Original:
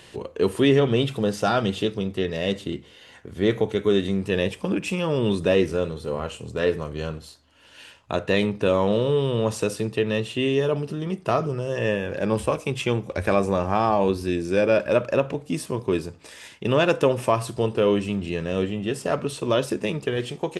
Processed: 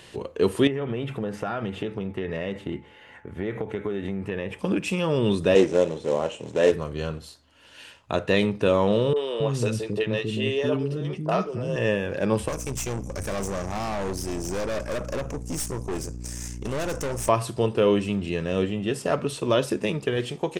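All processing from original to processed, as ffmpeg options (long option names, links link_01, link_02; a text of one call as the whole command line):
ffmpeg -i in.wav -filter_complex "[0:a]asettb=1/sr,asplit=3[link_01][link_02][link_03];[link_01]atrim=end=0.674[link_04];[link_02]atrim=start=0.67:end=4.59,asetpts=PTS-STARTPTS,afade=type=in:duration=0.004:curve=qsin,afade=type=out:start_time=3.916:duration=0.004:curve=qsin,highshelf=frequency=3000:width_type=q:width=1.5:gain=-10.5,acompressor=threshold=-24dB:ratio=10:attack=3.2:release=140:knee=1:detection=peak,aeval=exprs='val(0)+0.00126*sin(2*PI*860*n/s)':channel_layout=same[link_05];[link_03]atrim=start=4.586[link_06];[link_04][link_05]acrossfade=duration=0.004:curve1=hsin:curve2=qsin[link_07];[link_07][link_06]acrossfade=duration=0.004:curve1=qsin:curve2=hsin,asettb=1/sr,asplit=3[link_08][link_09][link_10];[link_08]atrim=end=5.554[link_11];[link_09]atrim=start=5.55:end=6.72,asetpts=PTS-STARTPTS,afade=type=in:duration=0.004:curve=qsin,afade=type=out:start_time=1.166:duration=0.004:curve=qsin,acrusher=bits=3:mode=log:mix=0:aa=0.000001,highpass=150,equalizer=frequency=320:width_type=q:width=4:gain=5,equalizer=frequency=580:width_type=q:width=4:gain=8,equalizer=frequency=860:width_type=q:width=4:gain=5,equalizer=frequency=1300:width_type=q:width=4:gain=-6,equalizer=frequency=4600:width_type=q:width=4:gain=-9,lowpass=frequency=7500:width=0.5412,lowpass=frequency=7500:width=1.3066[link_12];[link_10]atrim=start=6.716[link_13];[link_11][link_12]acrossfade=duration=0.004:curve1=hsin:curve2=qsin[link_14];[link_14][link_13]acrossfade=duration=0.004:curve1=qsin:curve2=hsin,asettb=1/sr,asplit=3[link_15][link_16][link_17];[link_15]atrim=end=9.134[link_18];[link_16]atrim=start=9.13:end=11.76,asetpts=PTS-STARTPTS,afade=type=in:duration=0.004:curve=qsin,afade=type=out:start_time=2.626:duration=0.004:curve=qsin,highshelf=frequency=8700:gain=-8.5,acrossover=split=340|1100[link_19][link_20][link_21];[link_21]adelay=30[link_22];[link_19]adelay=270[link_23];[link_23][link_20][link_22]amix=inputs=3:normalize=0,atrim=end_sample=115983[link_24];[link_17]atrim=start=11.756[link_25];[link_18][link_24]acrossfade=duration=0.004:curve1=hsin:curve2=qsin[link_26];[link_26][link_25]acrossfade=duration=0.004:curve1=qsin:curve2=hsin,asettb=1/sr,asplit=3[link_27][link_28][link_29];[link_27]atrim=end=12.484[link_30];[link_28]atrim=start=12.48:end=17.29,asetpts=PTS-STARTPTS,afade=type=in:duration=0.004:curve=qsin,afade=type=out:start_time=4.806:duration=0.004:curve=qsin,highshelf=frequency=4700:width_type=q:width=3:gain=10,aeval=exprs='val(0)+0.0282*(sin(2*PI*60*n/s)+sin(2*PI*2*60*n/s)/2+sin(2*PI*3*60*n/s)/3+sin(2*PI*4*60*n/s)/4+sin(2*PI*5*60*n/s)/5)':channel_layout=same,aeval=exprs='(tanh(20*val(0)+0.65)-tanh(0.65))/20':channel_layout=same[link_31];[link_29]atrim=start=17.286[link_32];[link_30][link_31]acrossfade=duration=0.004:curve1=hsin:curve2=qsin[link_33];[link_33][link_32]acrossfade=duration=0.004:curve1=qsin:curve2=hsin" out.wav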